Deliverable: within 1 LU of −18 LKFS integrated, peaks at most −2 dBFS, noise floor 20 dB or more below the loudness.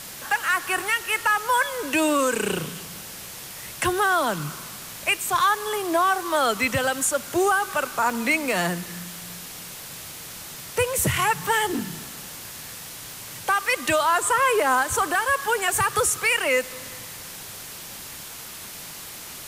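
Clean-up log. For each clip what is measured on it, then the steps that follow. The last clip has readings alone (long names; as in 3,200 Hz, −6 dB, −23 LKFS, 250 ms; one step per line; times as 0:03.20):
number of dropouts 2; longest dropout 2.9 ms; background noise floor −39 dBFS; target noise floor −43 dBFS; integrated loudness −22.5 LKFS; sample peak −10.5 dBFS; target loudness −18.0 LKFS
→ repair the gap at 0:00.30/0:08.10, 2.9 ms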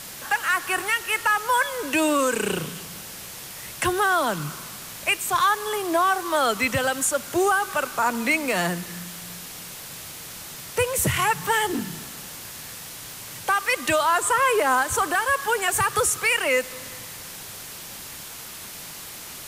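number of dropouts 0; background noise floor −39 dBFS; target noise floor −43 dBFS
→ broadband denoise 6 dB, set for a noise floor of −39 dBFS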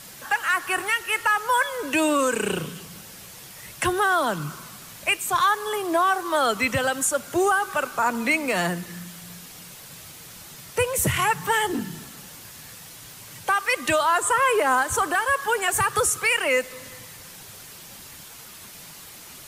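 background noise floor −43 dBFS; integrated loudness −22.5 LKFS; sample peak −11.0 dBFS; target loudness −18.0 LKFS
→ level +4.5 dB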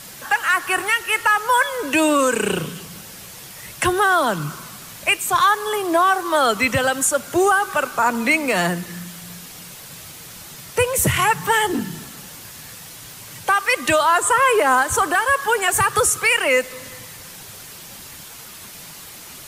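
integrated loudness −18.0 LKFS; sample peak −6.5 dBFS; background noise floor −39 dBFS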